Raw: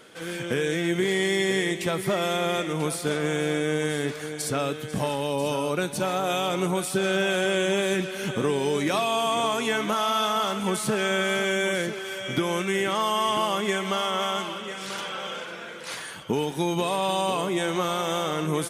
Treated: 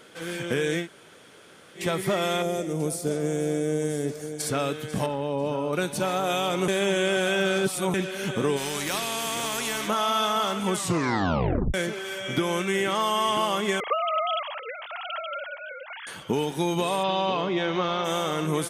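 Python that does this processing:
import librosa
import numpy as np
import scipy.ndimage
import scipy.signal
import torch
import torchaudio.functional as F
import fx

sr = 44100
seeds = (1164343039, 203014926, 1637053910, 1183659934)

y = fx.band_shelf(x, sr, hz=1900.0, db=-11.5, octaves=2.5, at=(2.42, 4.4))
y = fx.lowpass(y, sr, hz=1100.0, slope=6, at=(5.06, 5.73))
y = fx.spectral_comp(y, sr, ratio=2.0, at=(8.56, 9.87), fade=0.02)
y = fx.sine_speech(y, sr, at=(13.8, 16.07))
y = fx.steep_lowpass(y, sr, hz=5200.0, slope=36, at=(17.02, 18.04), fade=0.02)
y = fx.edit(y, sr, fx.room_tone_fill(start_s=0.83, length_s=0.96, crossfade_s=0.1),
    fx.reverse_span(start_s=6.68, length_s=1.26),
    fx.tape_stop(start_s=10.73, length_s=1.01), tone=tone)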